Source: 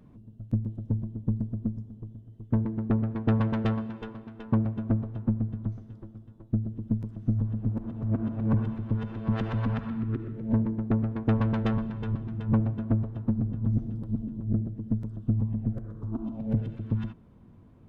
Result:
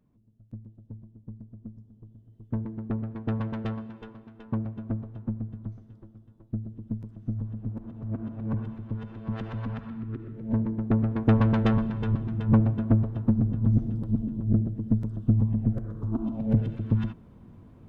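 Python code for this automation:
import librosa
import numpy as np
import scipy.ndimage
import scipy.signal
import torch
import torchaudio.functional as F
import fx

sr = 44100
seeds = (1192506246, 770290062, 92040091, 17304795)

y = fx.gain(x, sr, db=fx.line((1.43, -14.5), (2.36, -5.0), (10.11, -5.0), (11.19, 4.0)))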